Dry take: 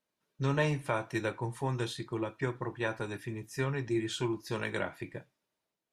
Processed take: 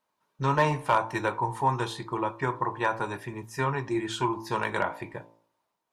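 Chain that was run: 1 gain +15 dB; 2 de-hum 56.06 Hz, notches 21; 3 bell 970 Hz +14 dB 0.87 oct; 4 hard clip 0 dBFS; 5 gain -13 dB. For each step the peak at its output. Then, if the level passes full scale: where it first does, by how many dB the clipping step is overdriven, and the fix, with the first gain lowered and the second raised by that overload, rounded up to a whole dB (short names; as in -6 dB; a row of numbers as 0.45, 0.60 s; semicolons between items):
-1.0, -2.0, +4.5, 0.0, -13.0 dBFS; step 3, 4.5 dB; step 1 +10 dB, step 5 -8 dB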